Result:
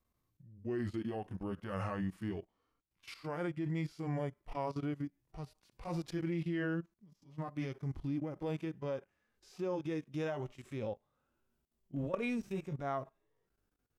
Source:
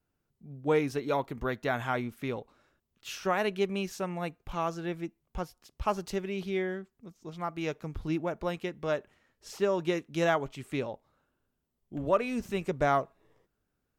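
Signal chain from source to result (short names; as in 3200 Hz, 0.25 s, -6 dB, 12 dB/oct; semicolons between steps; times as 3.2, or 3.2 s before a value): gliding pitch shift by -4.5 st ending unshifted; level quantiser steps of 21 dB; harmonic-percussive split percussive -14 dB; gain +7.5 dB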